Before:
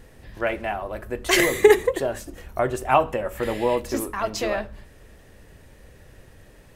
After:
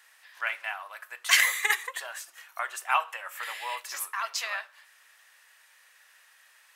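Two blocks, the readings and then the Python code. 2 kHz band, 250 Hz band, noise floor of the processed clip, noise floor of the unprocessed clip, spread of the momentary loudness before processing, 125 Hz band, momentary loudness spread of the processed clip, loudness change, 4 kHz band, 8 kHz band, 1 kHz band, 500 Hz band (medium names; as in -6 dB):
0.0 dB, under -40 dB, -60 dBFS, -51 dBFS, 14 LU, under -40 dB, 18 LU, -5.5 dB, 0.0 dB, 0.0 dB, -6.5 dB, -25.0 dB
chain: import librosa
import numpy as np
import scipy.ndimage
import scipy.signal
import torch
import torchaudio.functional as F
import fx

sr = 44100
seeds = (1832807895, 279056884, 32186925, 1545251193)

y = scipy.signal.sosfilt(scipy.signal.butter(4, 1100.0, 'highpass', fs=sr, output='sos'), x)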